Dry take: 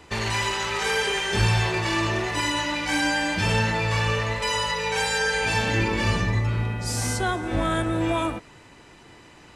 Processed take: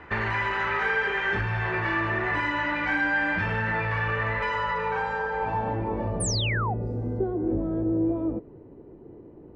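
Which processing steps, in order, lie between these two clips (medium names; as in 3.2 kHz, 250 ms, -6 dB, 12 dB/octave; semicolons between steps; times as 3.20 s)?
compression, threshold -25 dBFS, peak gain reduction 9 dB; sine folder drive 4 dB, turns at -16.5 dBFS; low-pass sweep 1.7 kHz -> 410 Hz, 4.41–7.02 s; painted sound fall, 6.20–6.74 s, 680–10000 Hz -23 dBFS; trim -6.5 dB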